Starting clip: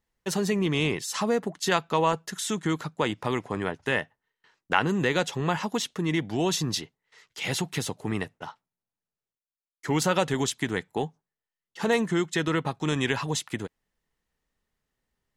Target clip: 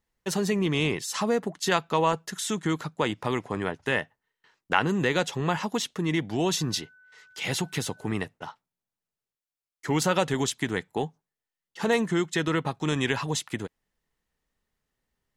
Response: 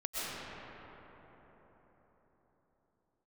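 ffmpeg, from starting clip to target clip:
-filter_complex "[0:a]asettb=1/sr,asplit=3[link_01][link_02][link_03];[link_01]atrim=end=6.584[link_04];[link_02]atrim=start=6.58:end=8.09,asetpts=PTS-STARTPTS,afade=type=in:duration=0.004:curve=qsin,afade=type=out:start_time=1.506:duration=0.004:curve=qsin,aeval=exprs='val(0)+0.002*sin(2*PI*1500*n/s)':channel_layout=same[link_05];[link_03]atrim=start=8.086[link_06];[link_04][link_05]acrossfade=duration=0.004:curve1=hsin:curve2=qsin[link_07];[link_07][link_06]acrossfade=duration=0.004:curve1=qsin:curve2=hsin"

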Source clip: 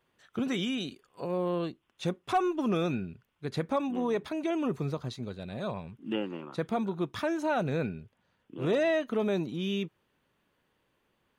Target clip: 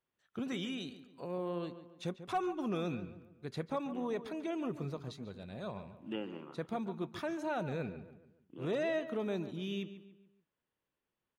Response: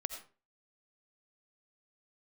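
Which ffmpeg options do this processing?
-filter_complex "[0:a]agate=range=-9dB:threshold=-57dB:ratio=16:detection=peak,asplit=2[link_01][link_02];[link_02]adelay=142,lowpass=frequency=2800:poles=1,volume=-12dB,asplit=2[link_03][link_04];[link_04]adelay=142,lowpass=frequency=2800:poles=1,volume=0.44,asplit=2[link_05][link_06];[link_06]adelay=142,lowpass=frequency=2800:poles=1,volume=0.44,asplit=2[link_07][link_08];[link_08]adelay=142,lowpass=frequency=2800:poles=1,volume=0.44[link_09];[link_01][link_03][link_05][link_07][link_09]amix=inputs=5:normalize=0,volume=-7.5dB"

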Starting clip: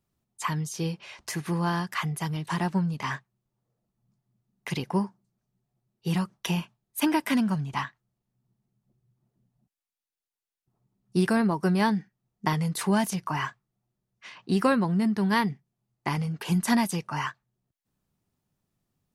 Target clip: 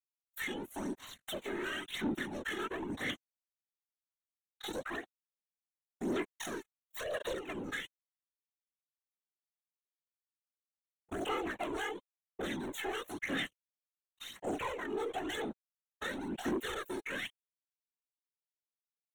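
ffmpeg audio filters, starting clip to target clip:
ffmpeg -i in.wav -af "lowpass=frequency=10000:width=0.5412,lowpass=frequency=10000:width=1.3066,agate=range=-33dB:threshold=-52dB:ratio=3:detection=peak,bass=frequency=250:gain=-4,treble=frequency=4000:gain=-11,aecho=1:1:7.1:0.55,acompressor=threshold=-39dB:ratio=3,aeval=exprs='sgn(val(0))*max(abs(val(0))-0.00251,0)':channel_layout=same,asetrate=80880,aresample=44100,atempo=0.545254,asoftclip=type=hard:threshold=-33dB,afftfilt=real='hypot(re,im)*cos(2*PI*random(0))':imag='hypot(re,im)*sin(2*PI*random(1))':win_size=512:overlap=0.75,aeval=exprs='0.0251*(cos(1*acos(clip(val(0)/0.0251,-1,1)))-cos(1*PI/2))+0.0112*(cos(5*acos(clip(val(0)/0.0251,-1,1)))-cos(5*PI/2))+0.00501*(cos(6*acos(clip(val(0)/0.0251,-1,1)))-cos(6*PI/2))+0.000562*(cos(7*acos(clip(val(0)/0.0251,-1,1)))-cos(7*PI/2))+0.00398*(cos(8*acos(clip(val(0)/0.0251,-1,1)))-cos(8*PI/2))':channel_layout=same,aphaser=in_gain=1:out_gain=1:delay=2.4:decay=0.49:speed=0.97:type=sinusoidal,asuperstop=centerf=4900:order=4:qfactor=2.3" out.wav

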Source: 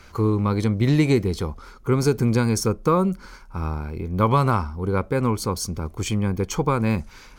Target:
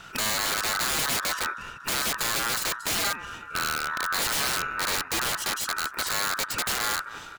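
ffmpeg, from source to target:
ffmpeg -i in.wav -filter_complex "[0:a]asplit=2[link_01][link_02];[link_02]acompressor=threshold=-29dB:ratio=8,volume=3dB[link_03];[link_01][link_03]amix=inputs=2:normalize=0,aecho=1:1:233|466|699|932:0.119|0.0547|0.0251|0.0116,aeval=exprs='val(0)*sin(2*PI*1400*n/s)':channel_layout=same,aeval=exprs='(mod(7.5*val(0)+1,2)-1)/7.5':channel_layout=same,volume=-3dB" out.wav

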